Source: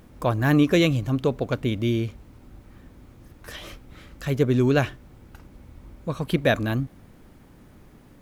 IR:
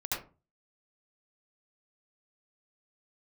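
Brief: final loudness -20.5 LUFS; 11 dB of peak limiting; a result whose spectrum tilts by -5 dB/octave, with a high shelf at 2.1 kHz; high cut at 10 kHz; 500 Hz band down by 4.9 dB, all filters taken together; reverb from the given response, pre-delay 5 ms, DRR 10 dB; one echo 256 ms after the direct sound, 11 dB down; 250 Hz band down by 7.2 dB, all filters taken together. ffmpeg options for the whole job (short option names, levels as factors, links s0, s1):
-filter_complex "[0:a]lowpass=10000,equalizer=f=250:t=o:g=-9,equalizer=f=500:t=o:g=-3.5,highshelf=f=2100:g=3.5,alimiter=limit=0.112:level=0:latency=1,aecho=1:1:256:0.282,asplit=2[s0][s1];[1:a]atrim=start_sample=2205,adelay=5[s2];[s1][s2]afir=irnorm=-1:irlink=0,volume=0.178[s3];[s0][s3]amix=inputs=2:normalize=0,volume=3.16"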